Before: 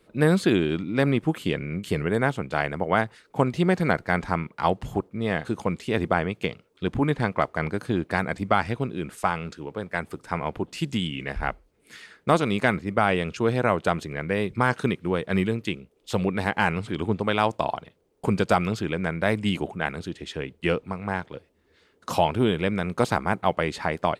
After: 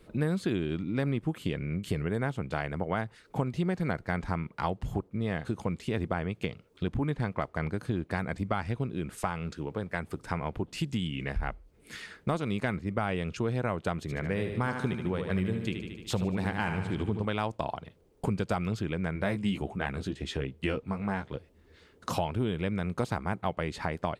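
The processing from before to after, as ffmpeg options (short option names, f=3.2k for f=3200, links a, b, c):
-filter_complex "[0:a]asettb=1/sr,asplit=3[a][b][c];[a]atrim=end=14.004[d];[b]atrim=start=14:end=17.25,asetpts=PTS-STARTPTS,afade=t=in:d=0.004:c=qsin,afade=t=out:st=3.246:d=0.004:c=qsin,aecho=1:1:75|150|225|300|375|450|525:0.422|0.228|0.123|0.0664|0.0359|0.0194|0.0105,atrim=end_sample=143325[e];[c]atrim=start=17.246[f];[d][e]acrossfade=d=0.004:c1=hsin:c2=qsin[g];[g][f]acrossfade=d=0.004:c1=qsin:c2=hsin,asettb=1/sr,asplit=3[h][i][j];[h]atrim=end=19.144[k];[i]atrim=start=19.14:end=21.36,asetpts=PTS-STARTPTS,afade=t=in:d=0.004:c=qsin,afade=t=out:st=2.216:d=0.004:c=qsin,asplit=2[l][m];[m]adelay=15,volume=-5dB[n];[l][n]amix=inputs=2:normalize=0,atrim=end_sample=97902[o];[j]atrim=start=21.356[p];[k][o]acrossfade=d=0.004:c1=hsin:c2=qsin[q];[q][p]acrossfade=d=0.004:c1=qsin:c2=hsin,lowshelf=f=150:g=10.5,acompressor=threshold=-34dB:ratio=2.5,volume=1.5dB"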